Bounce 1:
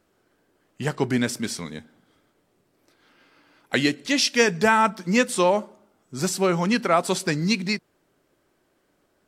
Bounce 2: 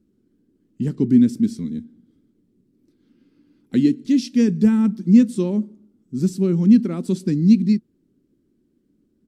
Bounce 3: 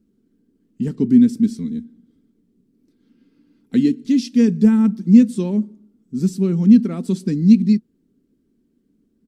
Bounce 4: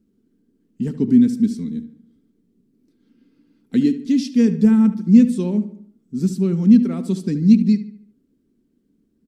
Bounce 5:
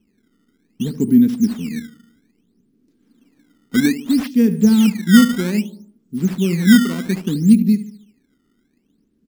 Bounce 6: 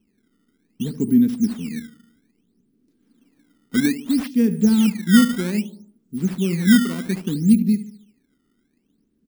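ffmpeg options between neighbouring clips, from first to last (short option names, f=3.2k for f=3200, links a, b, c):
-af "firequalizer=gain_entry='entry(150,0);entry(220,9);entry(650,-25);entry(3900,-16)':delay=0.05:min_phase=1,volume=4dB"
-af "aecho=1:1:4.4:0.34"
-filter_complex "[0:a]asplit=2[a][b];[b]adelay=73,lowpass=f=3.2k:p=1,volume=-12.5dB,asplit=2[c][d];[d]adelay=73,lowpass=f=3.2k:p=1,volume=0.47,asplit=2[e][f];[f]adelay=73,lowpass=f=3.2k:p=1,volume=0.47,asplit=2[g][h];[h]adelay=73,lowpass=f=3.2k:p=1,volume=0.47,asplit=2[i][j];[j]adelay=73,lowpass=f=3.2k:p=1,volume=0.47[k];[a][c][e][g][i][k]amix=inputs=6:normalize=0,volume=-1dB"
-af "acrusher=samples=15:mix=1:aa=0.000001:lfo=1:lforange=24:lforate=0.62,volume=1dB"
-af "aexciter=amount=1.7:drive=1.6:freq=9.2k,volume=-3.5dB"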